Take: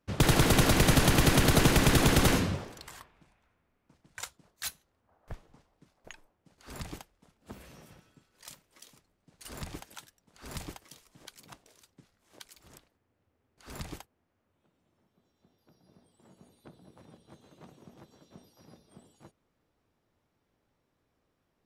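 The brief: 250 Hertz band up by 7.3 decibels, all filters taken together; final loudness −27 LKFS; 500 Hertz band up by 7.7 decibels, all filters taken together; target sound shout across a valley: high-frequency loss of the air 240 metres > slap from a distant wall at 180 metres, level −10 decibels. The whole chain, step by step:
high-frequency loss of the air 240 metres
parametric band 250 Hz +7.5 dB
parametric band 500 Hz +8 dB
slap from a distant wall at 180 metres, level −10 dB
level −5.5 dB

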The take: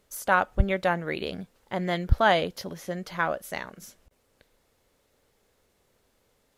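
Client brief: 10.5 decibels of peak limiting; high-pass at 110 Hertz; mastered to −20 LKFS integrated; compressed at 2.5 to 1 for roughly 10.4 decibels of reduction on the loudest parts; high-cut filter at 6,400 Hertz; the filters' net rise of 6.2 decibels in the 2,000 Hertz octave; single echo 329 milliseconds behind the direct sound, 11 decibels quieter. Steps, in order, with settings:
high-pass filter 110 Hz
low-pass filter 6,400 Hz
parametric band 2,000 Hz +8.5 dB
downward compressor 2.5 to 1, threshold −28 dBFS
brickwall limiter −23 dBFS
single-tap delay 329 ms −11 dB
level +16 dB

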